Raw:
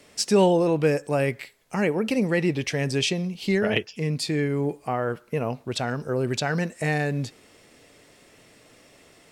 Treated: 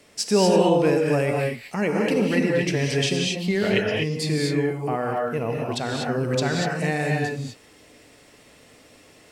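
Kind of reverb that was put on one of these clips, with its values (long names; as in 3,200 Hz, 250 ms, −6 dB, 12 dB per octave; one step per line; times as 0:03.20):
reverb whose tail is shaped and stops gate 270 ms rising, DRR −0.5 dB
level −1 dB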